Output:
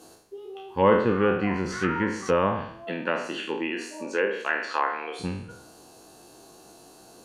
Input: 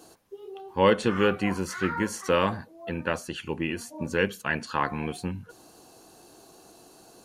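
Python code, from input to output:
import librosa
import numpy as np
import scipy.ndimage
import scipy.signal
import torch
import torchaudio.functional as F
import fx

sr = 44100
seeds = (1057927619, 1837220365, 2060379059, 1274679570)

y = fx.spec_trails(x, sr, decay_s=0.68)
y = fx.env_lowpass_down(y, sr, base_hz=1700.0, full_db=-19.0)
y = fx.highpass(y, sr, hz=fx.line((2.84, 180.0), (5.19, 440.0)), slope=24, at=(2.84, 5.19), fade=0.02)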